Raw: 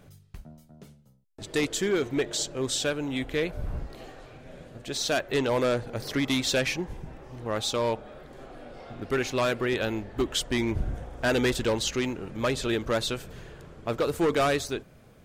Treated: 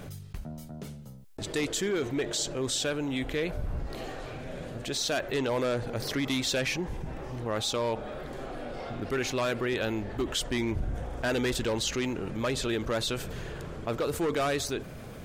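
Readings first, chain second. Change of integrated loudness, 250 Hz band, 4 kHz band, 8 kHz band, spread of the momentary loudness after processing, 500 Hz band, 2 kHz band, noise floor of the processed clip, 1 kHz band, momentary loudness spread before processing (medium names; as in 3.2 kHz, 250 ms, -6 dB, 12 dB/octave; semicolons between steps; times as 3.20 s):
-3.0 dB, -2.0 dB, -1.5 dB, -1.0 dB, 11 LU, -3.0 dB, -2.5 dB, -43 dBFS, -2.5 dB, 20 LU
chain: level flattener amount 50%; trim -5 dB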